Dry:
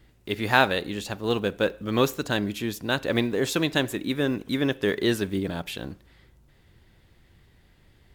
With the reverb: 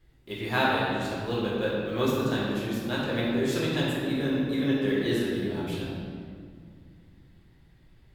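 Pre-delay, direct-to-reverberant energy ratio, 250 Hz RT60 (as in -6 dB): 4 ms, -7.0 dB, 3.2 s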